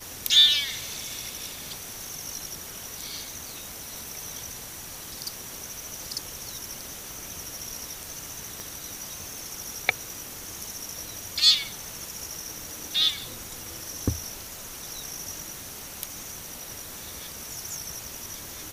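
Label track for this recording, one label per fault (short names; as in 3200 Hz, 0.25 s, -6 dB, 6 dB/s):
8.600000	8.600000	pop -20 dBFS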